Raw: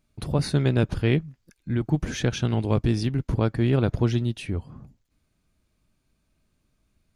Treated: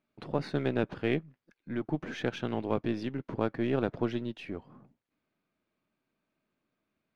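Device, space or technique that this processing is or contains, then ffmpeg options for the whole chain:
crystal radio: -af "highpass=250,lowpass=2.7k,aeval=exprs='if(lt(val(0),0),0.708*val(0),val(0))':c=same,volume=-2.5dB"

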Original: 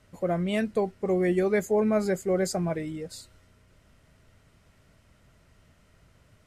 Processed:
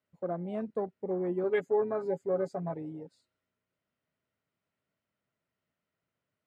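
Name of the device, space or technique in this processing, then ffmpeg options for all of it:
over-cleaned archive recording: -filter_complex "[0:a]highpass=160,lowpass=6.8k,lowshelf=f=260:g=-2.5,afwtdn=0.0251,asettb=1/sr,asplit=3[a][b][c];[a]atrim=end=1.434[d];[b]atrim=start=1.43:end=3.11,asetpts=PTS-STARTPTS,afade=t=in:d=0.004:c=qsin,afade=t=out:st=1.676:d=0.004:c=qsin,aecho=1:1:7.2:0.7,atrim=end_sample=74088[e];[c]atrim=start=3.106[f];[d][e]acrossfade=d=0.004:c1=hsin:c2=qsin[g];[g][f]acrossfade=d=0.004:c1=qsin:c2=hsin,equalizer=f=6.2k:w=1.3:g=-5.5,volume=-6dB"

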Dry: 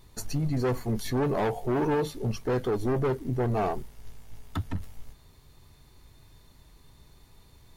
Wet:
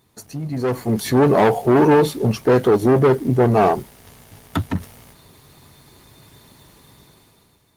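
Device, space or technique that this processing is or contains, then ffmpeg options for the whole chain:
video call: -af "highpass=130,dynaudnorm=f=230:g=7:m=14dB" -ar 48000 -c:a libopus -b:a 24k

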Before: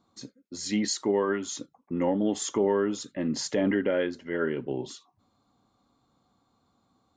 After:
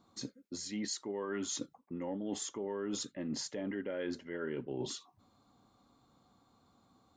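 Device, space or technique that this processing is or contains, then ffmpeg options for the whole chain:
compression on the reversed sound: -af "areverse,acompressor=threshold=-36dB:ratio=16,areverse,volume=1.5dB"

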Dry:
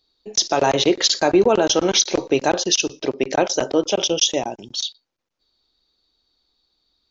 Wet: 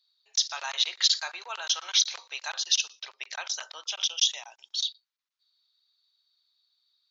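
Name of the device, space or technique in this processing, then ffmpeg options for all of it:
headphones lying on a table: -af "highpass=f=1.1k:w=0.5412,highpass=f=1.1k:w=1.3066,equalizer=f=3.9k:t=o:w=0.6:g=6.5,volume=-8.5dB"

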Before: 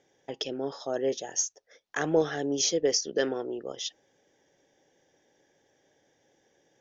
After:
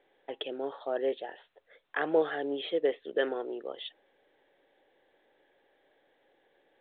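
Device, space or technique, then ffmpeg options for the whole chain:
telephone: -af "highpass=370,lowpass=3.2k" -ar 8000 -c:a pcm_mulaw

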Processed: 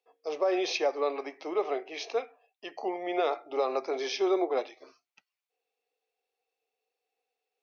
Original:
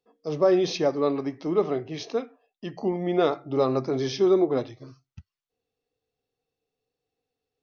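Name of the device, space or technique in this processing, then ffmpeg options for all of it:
laptop speaker: -af "highpass=f=410:w=0.5412,highpass=f=410:w=1.3066,equalizer=f=770:t=o:w=0.4:g=5.5,equalizer=f=2.4k:t=o:w=0.44:g=8.5,alimiter=limit=-16dB:level=0:latency=1:release=124,volume=-2dB"

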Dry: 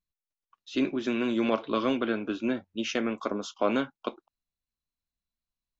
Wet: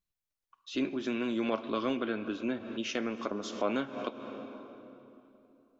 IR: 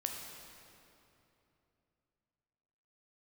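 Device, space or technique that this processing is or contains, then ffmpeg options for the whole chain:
ducked reverb: -filter_complex "[0:a]asplit=3[a][b][c];[1:a]atrim=start_sample=2205[d];[b][d]afir=irnorm=-1:irlink=0[e];[c]apad=whole_len=255448[f];[e][f]sidechaincompress=threshold=-40dB:ratio=8:attack=11:release=150,volume=2dB[g];[a][g]amix=inputs=2:normalize=0,volume=-6dB"

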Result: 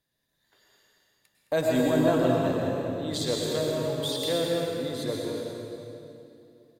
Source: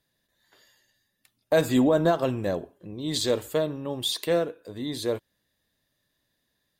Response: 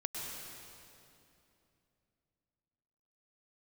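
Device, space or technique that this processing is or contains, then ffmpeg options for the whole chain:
cave: -filter_complex "[0:a]aecho=1:1:214:0.355[a];[1:a]atrim=start_sample=2205[b];[a][b]afir=irnorm=-1:irlink=0,volume=-3dB"

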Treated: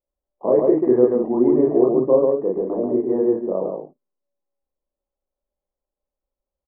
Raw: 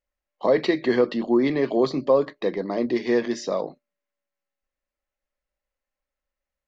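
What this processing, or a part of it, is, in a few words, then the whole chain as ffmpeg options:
under water: -filter_complex "[0:a]asettb=1/sr,asplit=3[a][b][c];[a]atrim=end=2.124[d];[b]atrim=start=2.12:end=3.62,asetpts=PTS-STARTPTS,afade=t=in:d=0.004:c=qsin,afade=t=out:st=1.496:d=0.004:c=qsin,lowpass=f=1.4k:p=1[e];[c]atrim=start=3.616[f];[d][e]acrossfade=d=0.004:c1=hsin:c2=qsin[g];[g][f]acrossfade=d=0.004:c1=qsin:c2=hsin,lowpass=f=970:w=0.5412,lowpass=f=970:w=1.3066,equalizer=f=390:t=o:w=0.49:g=6,aecho=1:1:32.07|137|189.5:1|0.794|0.447,volume=-2.5dB"

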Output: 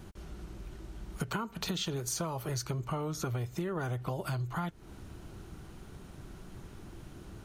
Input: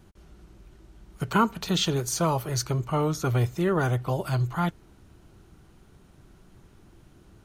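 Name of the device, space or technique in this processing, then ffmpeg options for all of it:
serial compression, leveller first: -af "acompressor=threshold=-27dB:ratio=2.5,acompressor=threshold=-39dB:ratio=5,volume=6dB"

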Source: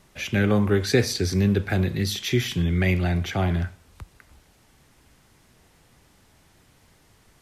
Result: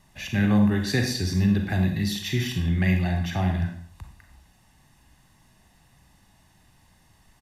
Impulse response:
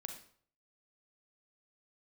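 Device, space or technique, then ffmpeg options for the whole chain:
microphone above a desk: -filter_complex "[0:a]aecho=1:1:1.1:0.56[a];[1:a]atrim=start_sample=2205[b];[a][b]afir=irnorm=-1:irlink=0"

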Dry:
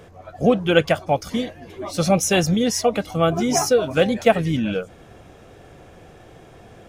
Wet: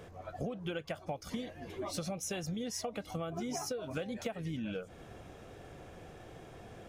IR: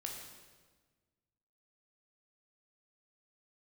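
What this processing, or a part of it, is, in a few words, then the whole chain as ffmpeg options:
serial compression, leveller first: -af "acompressor=threshold=-20dB:ratio=2.5,acompressor=threshold=-30dB:ratio=6,volume=-5.5dB"

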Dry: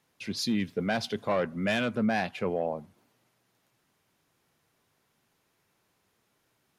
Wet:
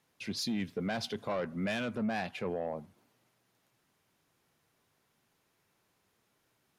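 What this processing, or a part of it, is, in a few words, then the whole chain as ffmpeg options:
soft clipper into limiter: -af "asoftclip=type=tanh:threshold=-20.5dB,alimiter=level_in=1dB:limit=-24dB:level=0:latency=1:release=65,volume=-1dB,volume=-2dB"

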